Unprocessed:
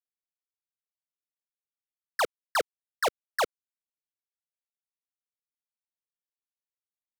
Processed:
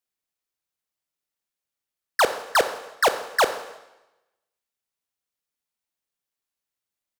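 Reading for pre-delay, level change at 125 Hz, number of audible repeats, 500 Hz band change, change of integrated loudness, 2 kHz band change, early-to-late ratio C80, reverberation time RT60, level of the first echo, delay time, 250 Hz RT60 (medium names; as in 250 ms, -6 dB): 21 ms, +8.0 dB, 4, +8.0 dB, +8.0 dB, +8.0 dB, 13.5 dB, 0.95 s, -18.0 dB, 67 ms, 0.95 s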